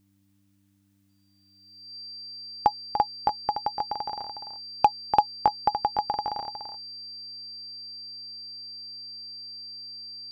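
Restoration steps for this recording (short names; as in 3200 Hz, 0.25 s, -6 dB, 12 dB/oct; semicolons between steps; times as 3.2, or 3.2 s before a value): clip repair -7.5 dBFS; de-hum 98.8 Hz, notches 3; notch 4700 Hz, Q 30; inverse comb 0.292 s -8.5 dB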